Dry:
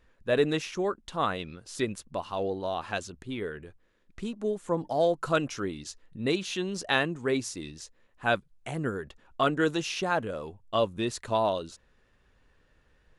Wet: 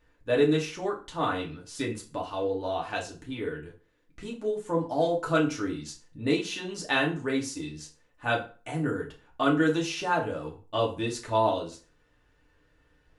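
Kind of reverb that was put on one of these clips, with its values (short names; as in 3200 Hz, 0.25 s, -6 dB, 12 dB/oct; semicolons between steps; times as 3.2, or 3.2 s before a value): FDN reverb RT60 0.37 s, low-frequency decay 1×, high-frequency decay 0.8×, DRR -2.5 dB; gain -4 dB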